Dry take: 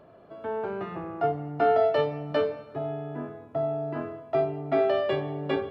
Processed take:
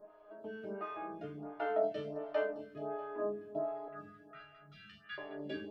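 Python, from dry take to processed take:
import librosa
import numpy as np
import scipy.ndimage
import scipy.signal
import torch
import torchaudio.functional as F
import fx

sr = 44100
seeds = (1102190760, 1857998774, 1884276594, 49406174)

y = fx.resonator_bank(x, sr, root=56, chord='fifth', decay_s=0.29)
y = fx.brickwall_bandstop(y, sr, low_hz=200.0, high_hz=1200.0, at=(3.88, 5.18))
y = fx.echo_feedback(y, sr, ms=214, feedback_pct=59, wet_db=-12.5)
y = fx.stagger_phaser(y, sr, hz=1.4)
y = y * 10.0 ** (11.5 / 20.0)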